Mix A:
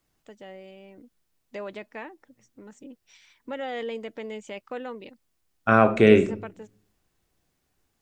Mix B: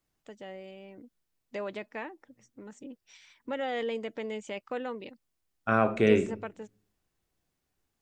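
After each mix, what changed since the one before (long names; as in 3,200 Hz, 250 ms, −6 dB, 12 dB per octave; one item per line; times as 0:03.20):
second voice −7.0 dB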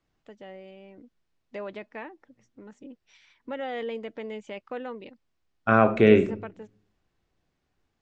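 second voice +6.0 dB
master: add high-frequency loss of the air 120 metres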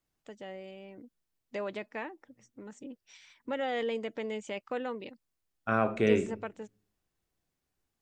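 second voice −9.0 dB
master: remove high-frequency loss of the air 120 metres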